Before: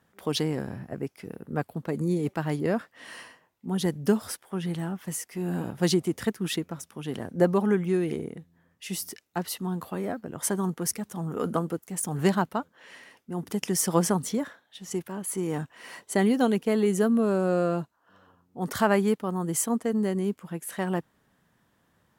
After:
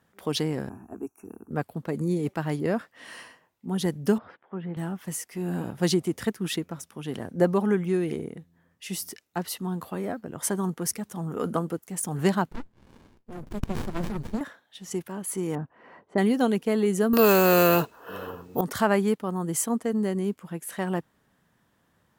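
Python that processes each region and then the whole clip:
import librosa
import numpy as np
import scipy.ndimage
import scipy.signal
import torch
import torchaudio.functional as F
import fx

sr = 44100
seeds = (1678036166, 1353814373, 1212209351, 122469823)

y = fx.chain(x, sr, fx.brickwall_bandstop(low_hz=2800.0, high_hz=5600.0),
    fx.fixed_phaser(hz=540.0, stages=6), at=(0.69, 1.51))
y = fx.chain(y, sr, fx.halfwave_gain(db=-3.0),
    fx.bandpass_edges(low_hz=150.0, high_hz=2300.0),
    fx.air_absorb(metres=340.0), at=(4.18, 4.77))
y = fx.chain(y, sr, fx.ripple_eq(per_octave=1.4, db=7),
    fx.running_max(window=65), at=(12.51, 14.41))
y = fx.chain(y, sr, fx.block_float(bits=7),
    fx.lowpass(hz=1100.0, slope=12), at=(15.55, 16.18))
y = fx.chain(y, sr, fx.small_body(hz=(440.0, 2600.0), ring_ms=35, db=14),
    fx.resample_bad(factor=3, down='none', up='hold'),
    fx.spectral_comp(ratio=2.0), at=(17.13, 18.61))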